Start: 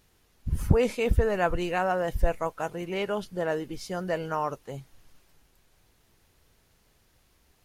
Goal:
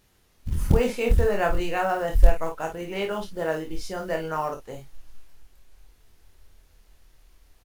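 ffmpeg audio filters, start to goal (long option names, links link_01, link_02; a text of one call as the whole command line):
ffmpeg -i in.wav -af "acrusher=bits=7:mode=log:mix=0:aa=0.000001,asubboost=boost=6:cutoff=52,aecho=1:1:25|52:0.596|0.422" out.wav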